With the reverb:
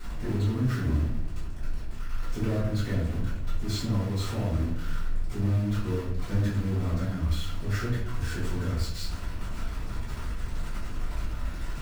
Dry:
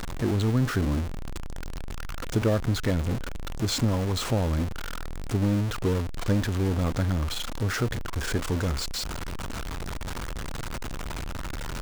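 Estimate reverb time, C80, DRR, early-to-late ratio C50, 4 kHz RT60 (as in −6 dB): 0.65 s, 6.5 dB, −15.0 dB, 3.0 dB, 0.45 s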